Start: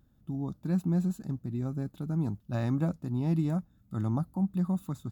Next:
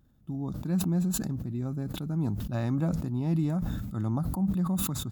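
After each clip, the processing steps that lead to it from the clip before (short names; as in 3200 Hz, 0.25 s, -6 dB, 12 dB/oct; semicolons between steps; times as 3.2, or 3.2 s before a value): sustainer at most 29 dB/s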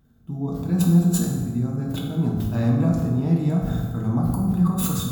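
reverb RT60 1.5 s, pre-delay 3 ms, DRR -3 dB; gain +2 dB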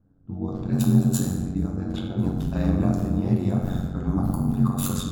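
ring modulator 46 Hz; low-pass opened by the level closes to 1000 Hz, open at -21 dBFS; gain +1 dB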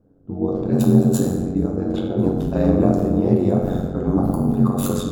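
bell 460 Hz +14.5 dB 1.5 oct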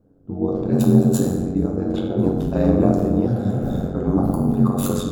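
spectral repair 3.29–3.78, 200–3300 Hz after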